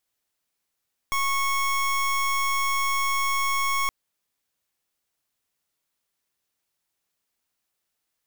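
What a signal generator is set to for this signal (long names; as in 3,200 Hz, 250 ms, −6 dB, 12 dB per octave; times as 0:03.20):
pulse wave 1,100 Hz, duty 26% −24 dBFS 2.77 s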